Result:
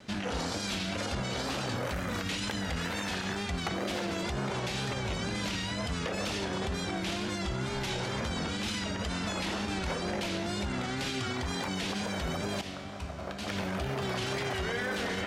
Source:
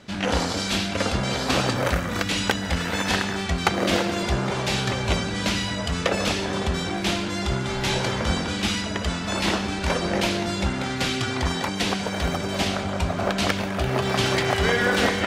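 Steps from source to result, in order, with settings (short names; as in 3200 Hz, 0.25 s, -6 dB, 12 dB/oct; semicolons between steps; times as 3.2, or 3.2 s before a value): vibrato 2.1 Hz 69 cents; 11.3–12 crackle 230/s -42 dBFS; 12.61–13.48 resonator 71 Hz, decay 1.9 s, harmonics all, mix 80%; limiter -21.5 dBFS, peak gain reduction 12 dB; gain -3 dB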